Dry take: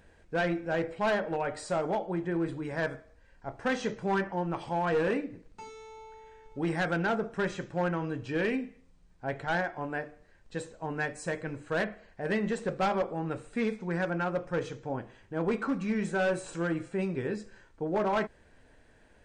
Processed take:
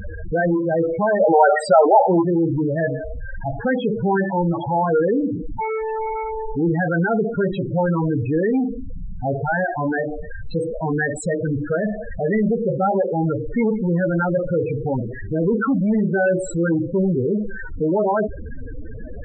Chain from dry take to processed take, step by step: power-law waveshaper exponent 0.35; 1.20–2.22 s: peaking EQ 1.2 kHz +11 dB 2.7 oct; loudest bins only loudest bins 8; trim +8 dB

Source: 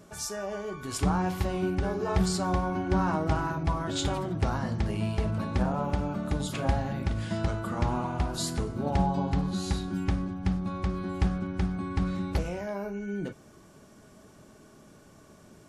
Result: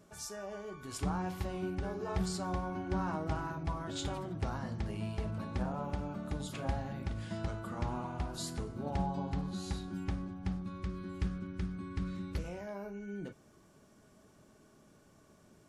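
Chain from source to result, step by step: 10.62–12.44 s: peaking EQ 750 Hz -13.5 dB 0.57 oct; trim -8.5 dB

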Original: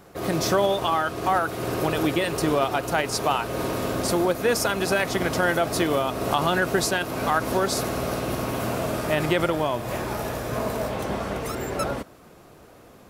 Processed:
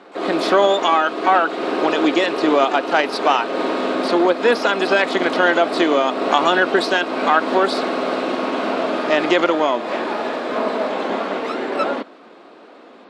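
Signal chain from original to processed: elliptic band-pass 250–4100 Hz, stop band 40 dB; harmony voices +12 st -16 dB; trim +7.5 dB

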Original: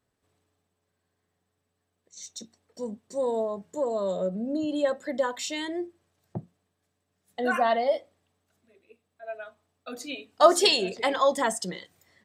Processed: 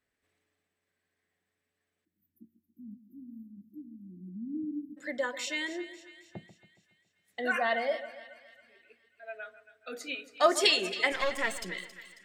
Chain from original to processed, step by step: 11.12–11.64 s: partial rectifier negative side -12 dB; ten-band graphic EQ 125 Hz -8 dB, 1 kHz -5 dB, 2 kHz +11 dB; 2.05–4.98 s: spectral selection erased 360–11000 Hz; 9.36–10.14 s: small resonant body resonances 460/1400 Hz, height 8 dB; on a send: two-band feedback delay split 1.5 kHz, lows 139 ms, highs 272 ms, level -14 dB; on the sum: trim -5.5 dB

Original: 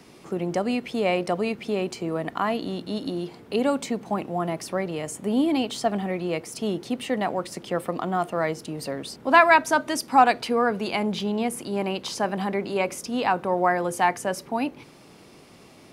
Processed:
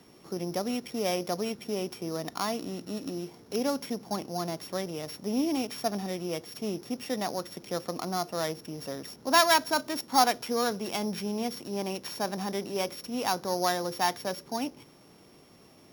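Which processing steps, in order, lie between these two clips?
sorted samples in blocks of 8 samples; trim -6 dB

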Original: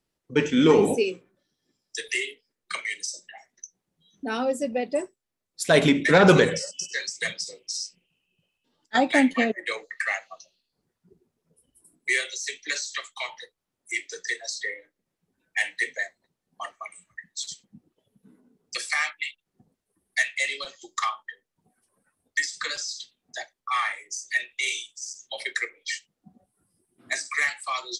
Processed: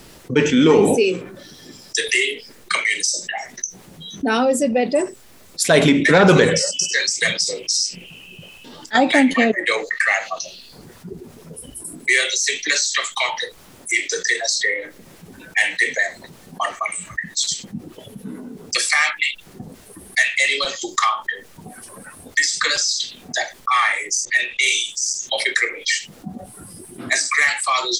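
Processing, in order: 24.25–24.76 s: level-controlled noise filter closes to 1.7 kHz, open at -23.5 dBFS; level flattener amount 50%; trim +2 dB

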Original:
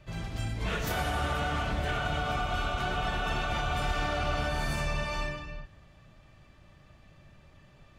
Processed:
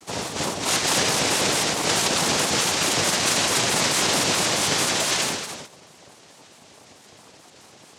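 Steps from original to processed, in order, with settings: peaking EQ 5.2 kHz +13 dB 2.4 oct; noise-vocoded speech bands 2; vibrato with a chosen wave square 4.6 Hz, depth 160 cents; trim +6.5 dB

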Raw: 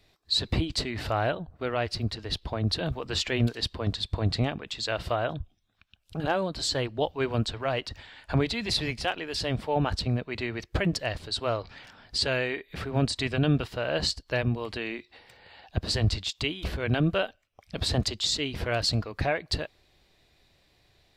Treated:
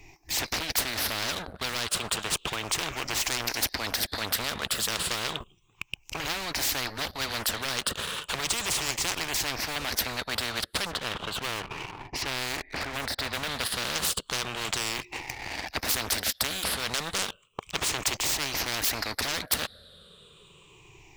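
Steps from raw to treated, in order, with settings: drifting ripple filter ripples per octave 0.71, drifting -0.33 Hz, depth 21 dB; 10.85–13.47 s: low-pass 1.7 kHz 12 dB/octave; waveshaping leveller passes 2; spectrum-flattening compressor 10:1; trim -2.5 dB

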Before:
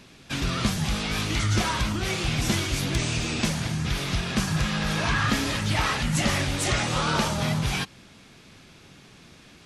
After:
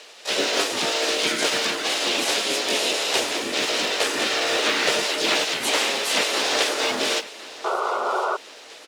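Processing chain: spectral gate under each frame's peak -10 dB weak; in parallel at -3 dB: gain riding within 4 dB 0.5 s; on the sum: cabinet simulation 250–7300 Hz, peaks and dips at 260 Hz +4 dB, 420 Hz +9 dB, 1 kHz -4 dB, 2.6 kHz +3 dB, 5.8 kHz -4 dB; modulation noise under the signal 27 dB; harmony voices -5 st -16 dB, +5 st -1 dB; on a send: feedback delay 1149 ms, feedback 45%, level -18 dB; on the sum: speed mistake 44.1 kHz file played as 48 kHz; painted sound noise, 7.64–8.37 s, 350–1500 Hz -24 dBFS

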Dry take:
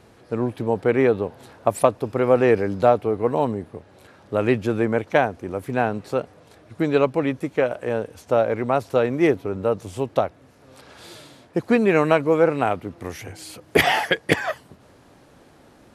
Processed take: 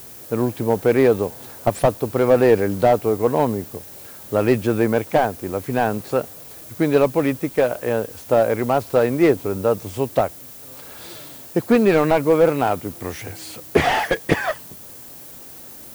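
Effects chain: added noise violet -42 dBFS; slew-rate limiter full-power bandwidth 150 Hz; trim +3 dB

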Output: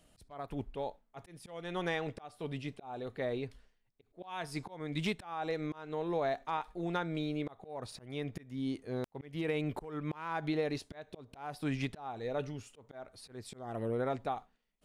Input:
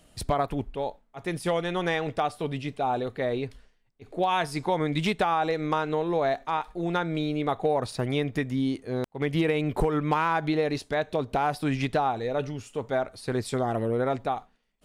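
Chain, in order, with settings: slow attack 329 ms; trim -7.5 dB

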